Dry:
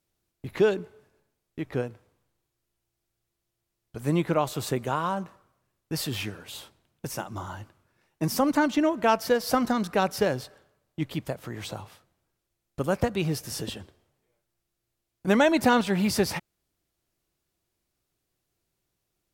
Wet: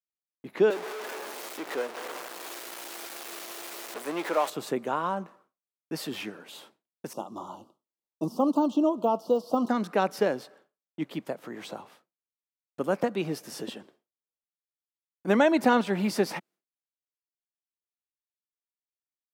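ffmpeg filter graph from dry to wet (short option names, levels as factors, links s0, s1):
-filter_complex "[0:a]asettb=1/sr,asplit=3[s0][s1][s2];[s0]atrim=end=0.704[s3];[s1]atrim=start=0.7:end=4.5,asetpts=PTS-STARTPTS,afade=t=in:d=0.004:c=qsin,afade=t=out:st=3.796:d=0.004:c=qsin,aeval=exprs='val(0)+0.5*0.0473*sgn(val(0))':c=same,highpass=510[s4];[s2]atrim=start=4.496[s5];[s3][s4]acrossfade=d=0.004:c1=hsin:c2=qsin[s6];[s6][s5]acrossfade=d=0.004:c1=qsin:c2=hsin,asettb=1/sr,asplit=3[s7][s8][s9];[s7]atrim=end=7.134[s10];[s8]atrim=start=7.13:end=9.69,asetpts=PTS-STARTPTS,afade=t=in:d=0.004:c=qsin,afade=t=out:st=2.556:d=0.004:c=qsin,deesser=1,asuperstop=centerf=1900:order=8:qfactor=1.1[s11];[s9]atrim=start=9.686[s12];[s10][s11]acrossfade=d=0.004:c1=hsin:c2=qsin[s13];[s13][s12]acrossfade=d=0.004:c1=qsin:c2=hsin,highpass=f=200:w=0.5412,highpass=f=200:w=1.3066,highshelf=f=2800:g=-8,agate=range=0.0224:threshold=0.00178:ratio=3:detection=peak"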